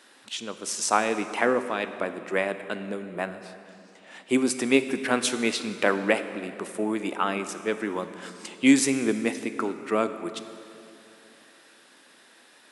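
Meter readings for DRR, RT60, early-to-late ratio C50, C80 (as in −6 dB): 10.0 dB, 2.7 s, 11.0 dB, 11.5 dB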